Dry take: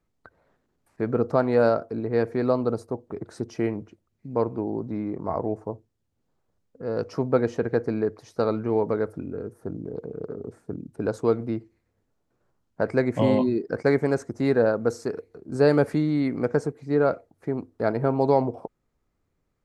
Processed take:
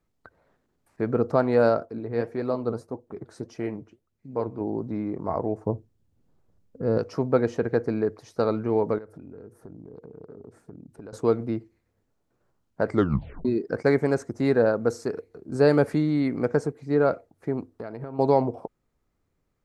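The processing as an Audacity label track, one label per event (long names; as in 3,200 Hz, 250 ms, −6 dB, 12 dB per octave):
1.850000	4.610000	flanger 1.7 Hz, delay 1.1 ms, depth 8.7 ms, regen +68%
5.660000	6.980000	low-shelf EQ 400 Hz +10 dB
8.980000	11.130000	downward compressor 4 to 1, threshold −41 dBFS
12.890000	12.890000	tape stop 0.56 s
17.670000	18.190000	downward compressor 10 to 1, threshold −31 dBFS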